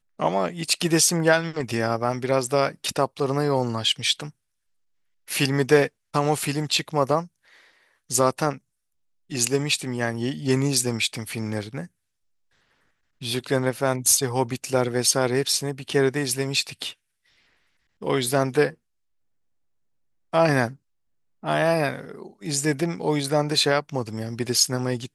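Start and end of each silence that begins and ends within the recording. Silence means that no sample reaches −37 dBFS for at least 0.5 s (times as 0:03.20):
0:04.30–0:05.28
0:07.26–0:08.10
0:08.57–0:09.31
0:11.86–0:13.22
0:16.92–0:18.02
0:18.71–0:20.33
0:20.73–0:21.43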